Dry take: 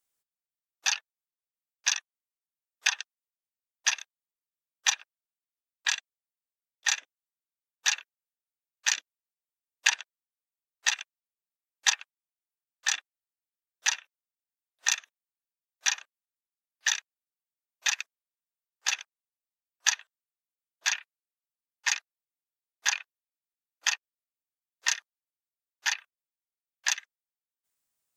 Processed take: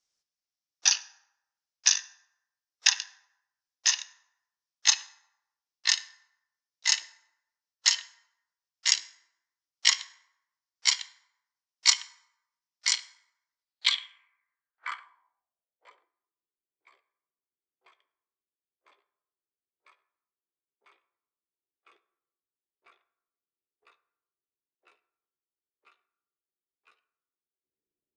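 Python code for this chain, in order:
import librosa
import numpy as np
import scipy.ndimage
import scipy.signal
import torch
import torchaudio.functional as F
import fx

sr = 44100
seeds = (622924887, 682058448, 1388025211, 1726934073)

y = fx.pitch_glide(x, sr, semitones=7.0, runs='starting unshifted')
y = fx.rev_fdn(y, sr, rt60_s=0.87, lf_ratio=1.05, hf_ratio=0.6, size_ms=59.0, drr_db=11.5)
y = fx.filter_sweep_lowpass(y, sr, from_hz=5500.0, to_hz=390.0, start_s=13.54, end_s=16.09, q=4.4)
y = F.gain(torch.from_numpy(y), -1.5).numpy()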